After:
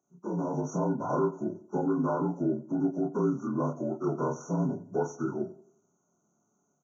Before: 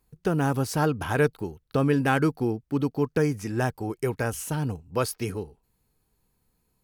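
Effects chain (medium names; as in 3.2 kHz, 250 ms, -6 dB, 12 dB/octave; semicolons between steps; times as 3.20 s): frequency axis rescaled in octaves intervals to 76%; high-pass 160 Hz 24 dB/octave; in parallel at -0.5 dB: compression, threshold -35 dBFS, peak gain reduction 16.5 dB; on the sum: peak limiter -19 dBFS, peak gain reduction 9 dB; doubling 28 ms -3 dB; tape echo 88 ms, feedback 45%, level -15 dB, low-pass 1.4 kHz; level rider gain up to 6 dB; brick-wall FIR band-stop 1.5–5.6 kHz; trim -8.5 dB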